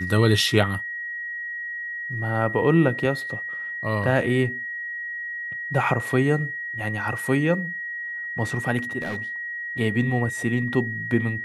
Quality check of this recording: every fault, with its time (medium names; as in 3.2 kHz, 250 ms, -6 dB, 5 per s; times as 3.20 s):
whine 1.9 kHz -29 dBFS
9.01–9.22 s: clipped -25 dBFS